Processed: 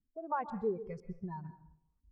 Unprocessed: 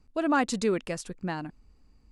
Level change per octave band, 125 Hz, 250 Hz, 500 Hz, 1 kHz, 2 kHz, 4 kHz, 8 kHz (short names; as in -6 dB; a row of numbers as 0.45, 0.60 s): -6.5 dB, -13.5 dB, -8.0 dB, -7.0 dB, -18.5 dB, under -30 dB, under -35 dB